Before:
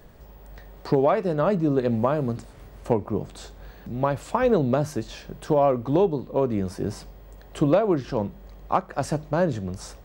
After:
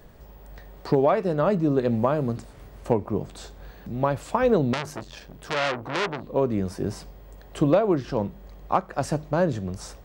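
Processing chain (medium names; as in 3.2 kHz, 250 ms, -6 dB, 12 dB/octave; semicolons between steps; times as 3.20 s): 4.73–6.24 s: transformer saturation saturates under 2.8 kHz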